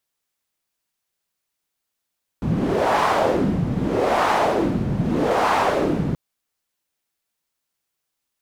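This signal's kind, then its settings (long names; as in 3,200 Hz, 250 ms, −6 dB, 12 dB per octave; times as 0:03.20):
wind from filtered noise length 3.73 s, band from 160 Hz, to 940 Hz, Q 2, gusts 3, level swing 3.5 dB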